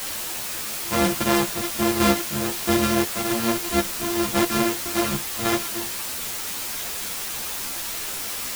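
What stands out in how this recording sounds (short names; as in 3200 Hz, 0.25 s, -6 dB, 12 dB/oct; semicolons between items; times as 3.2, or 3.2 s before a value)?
a buzz of ramps at a fixed pitch in blocks of 128 samples; random-step tremolo, depth 70%; a quantiser's noise floor 6-bit, dither triangular; a shimmering, thickened sound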